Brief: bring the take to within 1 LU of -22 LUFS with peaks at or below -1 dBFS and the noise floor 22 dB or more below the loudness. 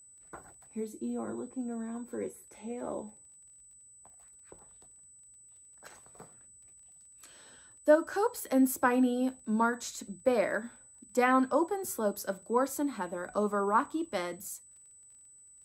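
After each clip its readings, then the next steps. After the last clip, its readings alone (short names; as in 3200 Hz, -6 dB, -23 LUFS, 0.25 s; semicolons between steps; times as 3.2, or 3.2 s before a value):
ticks 18/s; steady tone 8000 Hz; tone level -54 dBFS; loudness -31.5 LUFS; peak -12.0 dBFS; loudness target -22.0 LUFS
-> de-click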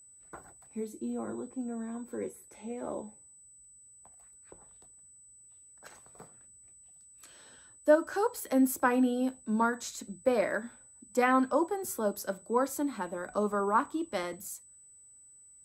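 ticks 0/s; steady tone 8000 Hz; tone level -54 dBFS
-> notch 8000 Hz, Q 30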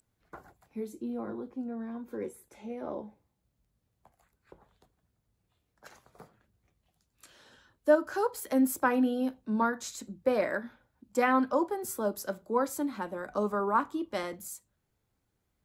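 steady tone none; loudness -31.5 LUFS; peak -12.0 dBFS; loudness target -22.0 LUFS
-> gain +9.5 dB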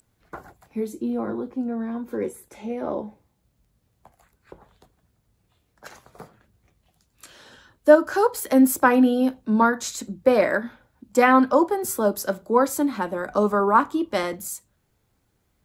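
loudness -22.0 LUFS; peak -2.5 dBFS; noise floor -70 dBFS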